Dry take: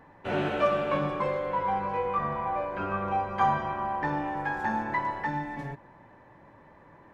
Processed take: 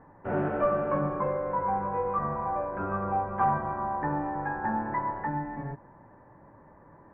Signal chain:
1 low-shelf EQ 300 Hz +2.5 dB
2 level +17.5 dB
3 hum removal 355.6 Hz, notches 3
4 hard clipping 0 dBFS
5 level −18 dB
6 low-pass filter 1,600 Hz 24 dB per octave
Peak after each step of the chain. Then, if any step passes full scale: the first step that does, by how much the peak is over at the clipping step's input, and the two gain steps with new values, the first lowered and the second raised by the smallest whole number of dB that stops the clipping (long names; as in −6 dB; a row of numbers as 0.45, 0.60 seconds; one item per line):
−12.0, +5.5, +5.5, 0.0, −18.0, −16.5 dBFS
step 2, 5.5 dB
step 2 +11.5 dB, step 5 −12 dB